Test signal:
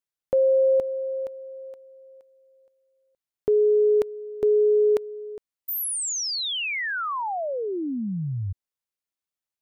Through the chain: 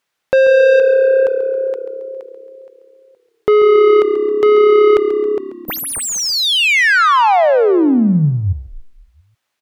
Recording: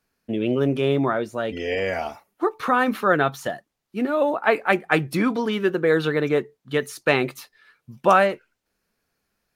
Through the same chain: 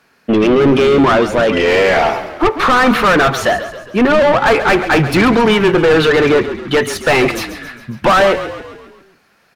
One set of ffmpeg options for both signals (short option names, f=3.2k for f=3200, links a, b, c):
-filter_complex "[0:a]asplit=2[a][b];[b]highpass=f=720:p=1,volume=32dB,asoftclip=type=tanh:threshold=-2.5dB[c];[a][c]amix=inputs=2:normalize=0,lowpass=f=3.1k:p=1,volume=-6dB,bass=f=250:g=5,treble=f=4k:g=-3,asplit=7[d][e][f][g][h][i][j];[e]adelay=136,afreqshift=-34,volume=-12dB[k];[f]adelay=272,afreqshift=-68,volume=-17.5dB[l];[g]adelay=408,afreqshift=-102,volume=-23dB[m];[h]adelay=544,afreqshift=-136,volume=-28.5dB[n];[i]adelay=680,afreqshift=-170,volume=-34.1dB[o];[j]adelay=816,afreqshift=-204,volume=-39.6dB[p];[d][k][l][m][n][o][p]amix=inputs=7:normalize=0,volume=-1dB"